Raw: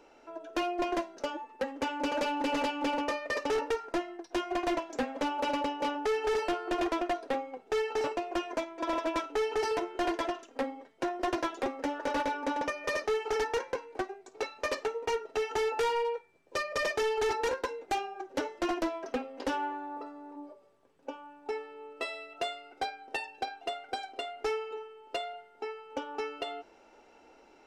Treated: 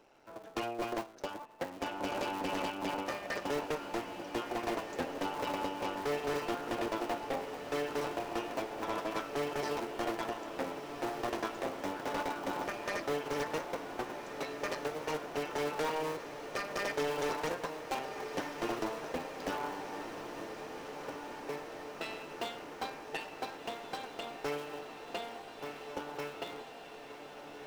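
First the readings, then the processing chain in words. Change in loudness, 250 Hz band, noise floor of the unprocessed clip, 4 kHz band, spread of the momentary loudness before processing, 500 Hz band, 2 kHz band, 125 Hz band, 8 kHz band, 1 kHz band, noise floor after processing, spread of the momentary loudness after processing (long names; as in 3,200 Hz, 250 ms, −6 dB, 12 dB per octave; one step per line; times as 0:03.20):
−4.5 dB, −4.0 dB, −60 dBFS, −3.5 dB, 9 LU, −4.5 dB, −3.5 dB, +6.5 dB, −2.0 dB, −4.0 dB, −49 dBFS, 8 LU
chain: sub-harmonics by changed cycles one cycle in 3, muted
feedback delay with all-pass diffusion 1,530 ms, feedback 75%, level −9 dB
level −3.5 dB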